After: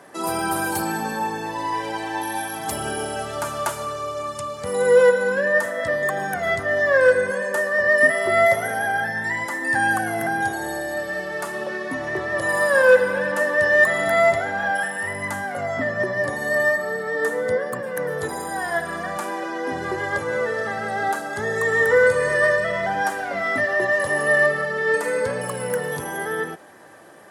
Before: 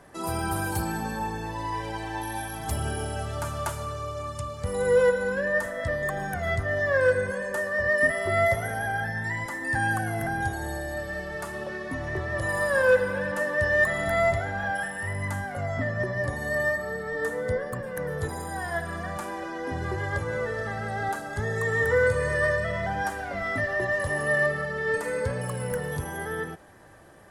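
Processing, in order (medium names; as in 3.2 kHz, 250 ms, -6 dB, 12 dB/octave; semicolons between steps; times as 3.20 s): high-pass 230 Hz 12 dB/octave; trim +6.5 dB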